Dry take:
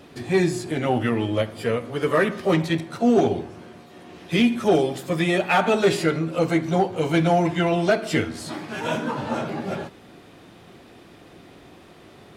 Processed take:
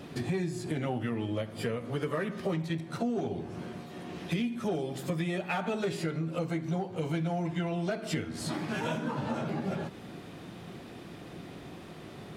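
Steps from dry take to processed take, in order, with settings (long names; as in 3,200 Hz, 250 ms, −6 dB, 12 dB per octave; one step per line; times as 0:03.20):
parametric band 160 Hz +6.5 dB 1.1 octaves
downward compressor 6 to 1, threshold −30 dBFS, peak gain reduction 17 dB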